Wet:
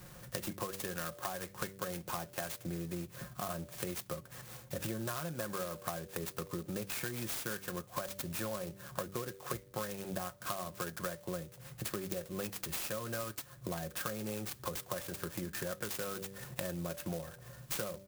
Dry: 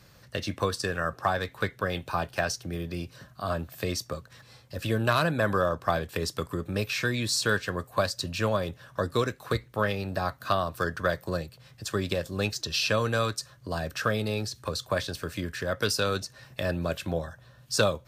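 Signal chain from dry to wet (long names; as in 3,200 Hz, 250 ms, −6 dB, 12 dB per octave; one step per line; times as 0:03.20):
comb filter 5.6 ms, depth 51%
hum removal 97.22 Hz, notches 6
downward compressor 10 to 1, threshold −39 dBFS, peak gain reduction 21 dB
converter with an unsteady clock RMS 0.088 ms
level +3 dB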